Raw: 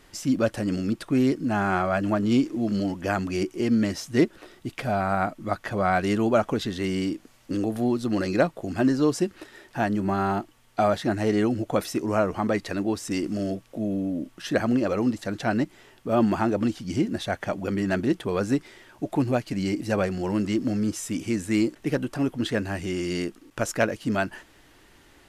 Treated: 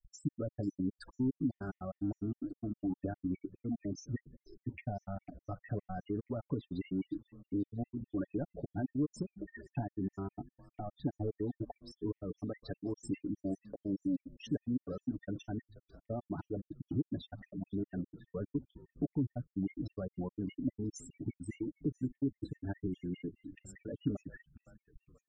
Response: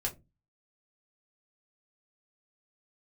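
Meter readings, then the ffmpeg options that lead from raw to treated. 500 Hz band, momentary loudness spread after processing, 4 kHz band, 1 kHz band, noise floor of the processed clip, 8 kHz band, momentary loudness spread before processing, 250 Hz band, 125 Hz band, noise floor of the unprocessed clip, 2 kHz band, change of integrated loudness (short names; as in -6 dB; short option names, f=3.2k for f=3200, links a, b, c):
-17.5 dB, 8 LU, -21.5 dB, -22.0 dB, under -85 dBFS, under -15 dB, 7 LU, -12.5 dB, -9.5 dB, -56 dBFS, -24.5 dB, -13.5 dB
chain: -filter_complex "[0:a]asoftclip=type=tanh:threshold=-19.5dB,highshelf=f=4.4k:g=6,acompressor=threshold=-41dB:ratio=4,asplit=2[a][b];[b]aecho=0:1:1139:0.0708[c];[a][c]amix=inputs=2:normalize=0,afftfilt=real='re*gte(hypot(re,im),0.0158)':imag='im*gte(hypot(re,im),0.0158)':win_size=1024:overlap=0.75,agate=range=-26dB:threshold=-59dB:ratio=16:detection=peak,acrossover=split=320[d][e];[e]acompressor=threshold=-47dB:ratio=6[f];[d][f]amix=inputs=2:normalize=0,tiltshelf=f=860:g=4,aecho=1:1:7:0.58,asplit=2[g][h];[h]asplit=4[i][j][k][l];[i]adelay=496,afreqshift=-69,volume=-19.5dB[m];[j]adelay=992,afreqshift=-138,volume=-25dB[n];[k]adelay=1488,afreqshift=-207,volume=-30.5dB[o];[l]adelay=1984,afreqshift=-276,volume=-36dB[p];[m][n][o][p]amix=inputs=4:normalize=0[q];[g][q]amix=inputs=2:normalize=0,afftfilt=real='re*gt(sin(2*PI*4.9*pts/sr)*(1-2*mod(floor(b*sr/1024/1800),2)),0)':imag='im*gt(sin(2*PI*4.9*pts/sr)*(1-2*mod(floor(b*sr/1024/1800),2)),0)':win_size=1024:overlap=0.75,volume=3.5dB"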